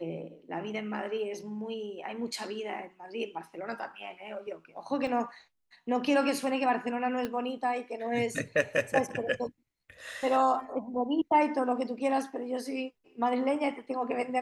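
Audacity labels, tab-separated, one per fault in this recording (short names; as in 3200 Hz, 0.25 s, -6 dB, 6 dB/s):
5.070000	5.070000	gap 2.7 ms
7.250000	7.250000	pop -19 dBFS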